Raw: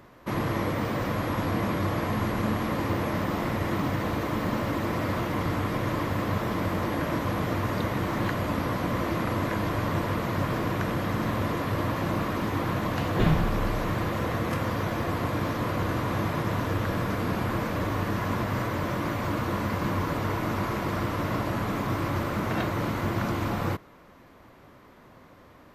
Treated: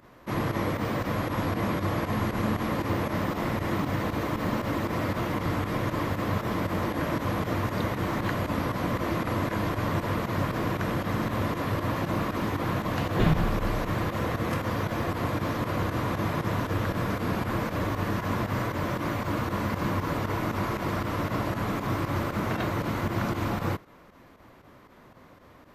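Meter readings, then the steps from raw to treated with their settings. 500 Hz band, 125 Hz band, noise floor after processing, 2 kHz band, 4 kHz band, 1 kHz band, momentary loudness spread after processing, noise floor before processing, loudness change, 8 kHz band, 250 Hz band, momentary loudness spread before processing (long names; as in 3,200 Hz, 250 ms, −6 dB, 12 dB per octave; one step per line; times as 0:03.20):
−0.5 dB, −0.5 dB, −53 dBFS, −0.5 dB, −0.5 dB, −0.5 dB, 1 LU, −53 dBFS, −0.5 dB, −0.5 dB, −0.5 dB, 1 LU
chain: fake sidechain pumping 117 BPM, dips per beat 2, −11 dB, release 70 ms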